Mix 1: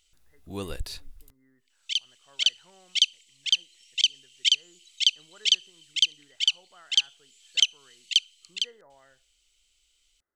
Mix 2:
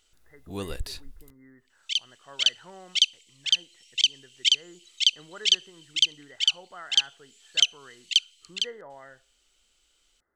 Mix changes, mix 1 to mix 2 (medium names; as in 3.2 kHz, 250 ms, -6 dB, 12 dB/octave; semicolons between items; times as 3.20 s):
speech +11.0 dB; reverb: on, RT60 2.2 s